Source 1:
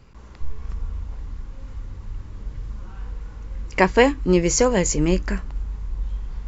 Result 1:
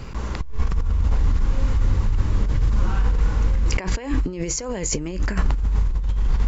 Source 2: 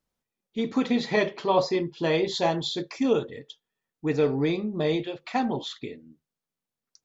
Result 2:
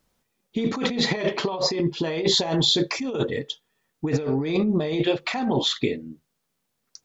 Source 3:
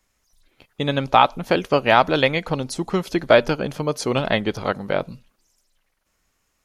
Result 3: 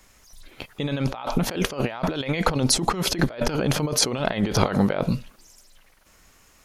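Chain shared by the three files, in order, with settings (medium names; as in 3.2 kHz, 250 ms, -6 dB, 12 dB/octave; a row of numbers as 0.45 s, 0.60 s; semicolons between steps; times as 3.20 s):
compressor with a negative ratio -31 dBFS, ratio -1; normalise loudness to -24 LUFS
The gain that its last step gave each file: +10.0 dB, +7.5 dB, +5.5 dB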